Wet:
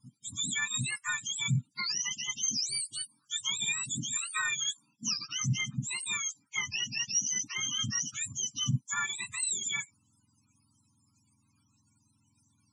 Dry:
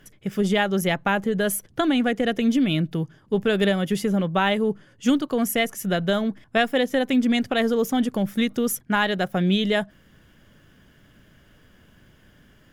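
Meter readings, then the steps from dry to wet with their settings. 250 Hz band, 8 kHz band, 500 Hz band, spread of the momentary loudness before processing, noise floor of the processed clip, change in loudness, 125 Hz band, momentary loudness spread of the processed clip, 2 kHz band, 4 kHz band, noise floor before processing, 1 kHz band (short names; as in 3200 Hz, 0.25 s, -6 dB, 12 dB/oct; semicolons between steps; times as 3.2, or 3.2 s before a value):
-23.0 dB, +7.0 dB, under -40 dB, 4 LU, -72 dBFS, -8.5 dB, -7.0 dB, 5 LU, -7.5 dB, -2.5 dB, -57 dBFS, -17.0 dB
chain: spectrum mirrored in octaves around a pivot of 1200 Hz; loudest bins only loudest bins 64; low shelf 180 Hz -9 dB; downsampling 22050 Hz; elliptic band-stop 270–1200 Hz, stop band 70 dB; gain -5 dB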